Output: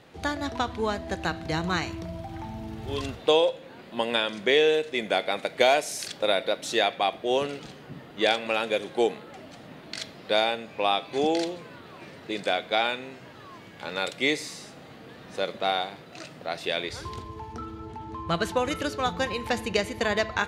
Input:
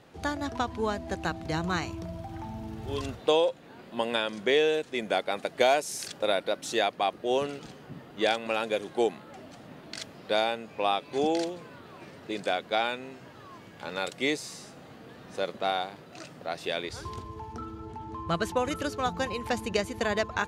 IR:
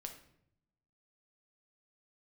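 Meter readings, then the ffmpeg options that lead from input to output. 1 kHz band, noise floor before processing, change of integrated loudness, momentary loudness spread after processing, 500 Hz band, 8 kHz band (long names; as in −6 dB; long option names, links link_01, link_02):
+2.0 dB, −50 dBFS, +3.0 dB, 20 LU, +2.5 dB, +1.5 dB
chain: -filter_complex "[0:a]asplit=2[link_01][link_02];[link_02]equalizer=frequency=500:width_type=o:width=1:gain=4,equalizer=frequency=2000:width_type=o:width=1:gain=10,equalizer=frequency=4000:width_type=o:width=1:gain=11[link_03];[1:a]atrim=start_sample=2205[link_04];[link_03][link_04]afir=irnorm=-1:irlink=0,volume=-10dB[link_05];[link_01][link_05]amix=inputs=2:normalize=0"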